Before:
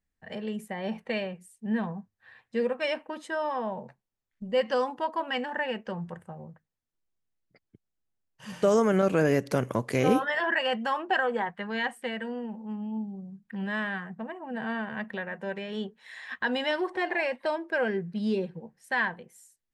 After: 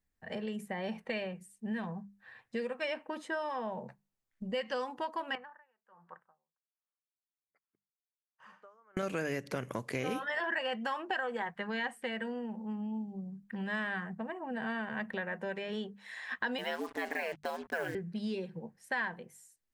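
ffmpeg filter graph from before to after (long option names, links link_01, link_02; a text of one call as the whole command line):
ffmpeg -i in.wav -filter_complex "[0:a]asettb=1/sr,asplit=3[link_01][link_02][link_03];[link_01]atrim=end=5.354[link_04];[link_02]atrim=start=5.35:end=8.97,asetpts=PTS-STARTPTS,afade=type=in:duration=0.004:curve=qsin,afade=type=out:start_time=3.616:duration=0.004:curve=qsin,bandpass=frequency=1200:width_type=q:width=2.7,aeval=exprs='val(0)*pow(10,-32*(0.5-0.5*cos(2*PI*1.3*n/s))/20)':channel_layout=same[link_05];[link_03]atrim=start=8.966[link_06];[link_04][link_05]acrossfade=duration=0.004:curve1=hsin:curve2=qsin[link_07];[link_07][link_06]acrossfade=duration=0.004:curve1=qsin:curve2=hsin,asettb=1/sr,asplit=3[link_08][link_09][link_10];[link_08]atrim=end=16.584[link_11];[link_09]atrim=start=16.58:end=17.95,asetpts=PTS-STARTPTS,afade=type=in:duration=0.004:curve=qsin,afade=type=out:start_time=1.366:duration=0.004:curve=qsin,acrusher=bits=6:mix=0:aa=0.5,aeval=exprs='val(0)*sin(2*PI*81*n/s)':channel_layout=same[link_12];[link_10]atrim=start=17.946[link_13];[link_11][link_12]acrossfade=duration=0.004:curve1=hsin:curve2=qsin[link_14];[link_14][link_13]acrossfade=duration=0.004:curve1=qsin:curve2=hsin,equalizer=frequency=3300:width=1.5:gain=-2.5,bandreject=frequency=50:width_type=h:width=6,bandreject=frequency=100:width_type=h:width=6,bandreject=frequency=150:width_type=h:width=6,bandreject=frequency=200:width_type=h:width=6,acrossover=split=1800|3800[link_15][link_16][link_17];[link_15]acompressor=threshold=-35dB:ratio=4[link_18];[link_16]acompressor=threshold=-39dB:ratio=4[link_19];[link_17]acompressor=threshold=-55dB:ratio=4[link_20];[link_18][link_19][link_20]amix=inputs=3:normalize=0" out.wav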